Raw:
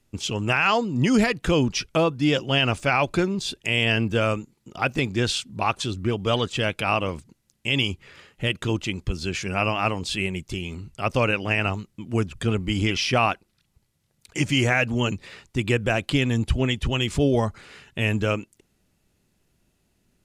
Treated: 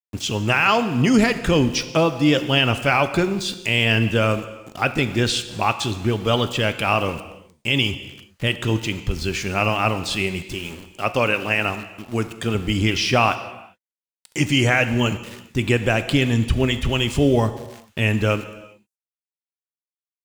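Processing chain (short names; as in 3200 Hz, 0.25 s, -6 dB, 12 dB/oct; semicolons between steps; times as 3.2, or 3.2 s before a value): 10.52–12.55 low shelf 150 Hz -10 dB; sample gate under -39.5 dBFS; non-linear reverb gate 0.44 s falling, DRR 10 dB; gain +3 dB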